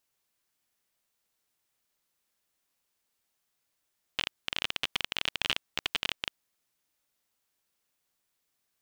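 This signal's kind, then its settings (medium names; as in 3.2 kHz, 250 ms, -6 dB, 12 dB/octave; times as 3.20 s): random clicks 26 per s -11 dBFS 2.13 s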